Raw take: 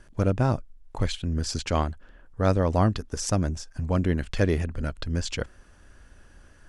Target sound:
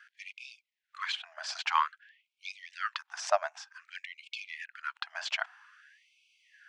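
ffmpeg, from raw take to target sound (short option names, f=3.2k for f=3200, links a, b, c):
-filter_complex "[0:a]asettb=1/sr,asplit=3[a][b][c];[a]atrim=end=4.034[d];[b]atrim=start=4.03:end=5.03,asetpts=PTS-STARTPTS,afade=t=in:d=0.004:c=qsin,afade=t=out:st=0.996:d=0.004:c=qsin,acompressor=threshold=-26dB:ratio=2.5[e];[c]atrim=start=5.026[f];[d][e]acrossfade=d=0.004:c1=hsin:c2=qsin[g];[g][f]acrossfade=d=0.004:c1=qsin:c2=hsin,highpass=130,lowpass=2.9k,afftfilt=real='re*gte(b*sr/1024,590*pow(2200/590,0.5+0.5*sin(2*PI*0.52*pts/sr)))':imag='im*gte(b*sr/1024,590*pow(2200/590,0.5+0.5*sin(2*PI*0.52*pts/sr)))':win_size=1024:overlap=0.75,volume=5.5dB"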